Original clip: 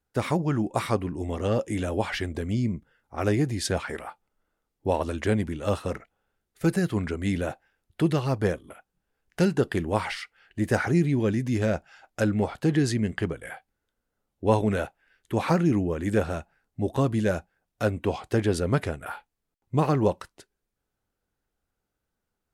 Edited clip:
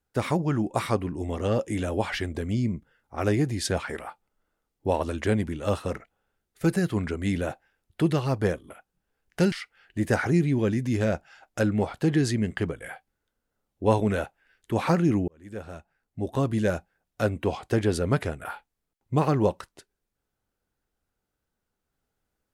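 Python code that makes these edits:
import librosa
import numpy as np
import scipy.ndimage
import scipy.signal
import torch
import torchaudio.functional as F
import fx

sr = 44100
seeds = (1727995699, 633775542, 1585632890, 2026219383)

y = fx.edit(x, sr, fx.cut(start_s=9.52, length_s=0.61),
    fx.fade_in_span(start_s=15.89, length_s=1.35), tone=tone)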